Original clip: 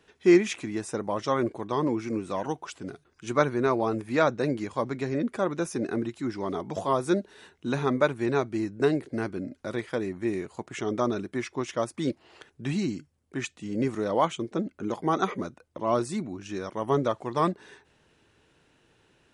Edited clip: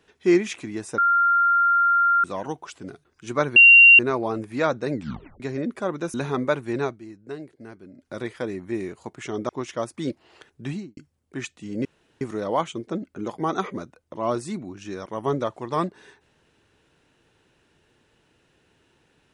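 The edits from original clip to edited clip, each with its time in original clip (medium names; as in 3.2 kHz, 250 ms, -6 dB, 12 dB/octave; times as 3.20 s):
0.98–2.24 s: bleep 1.39 kHz -15.5 dBFS
3.56 s: add tone 2.76 kHz -7 dBFS 0.43 s
4.50 s: tape stop 0.47 s
5.71–7.67 s: delete
8.36–9.65 s: dip -12 dB, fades 0.18 s
11.02–11.49 s: delete
12.64–12.97 s: studio fade out
13.85 s: insert room tone 0.36 s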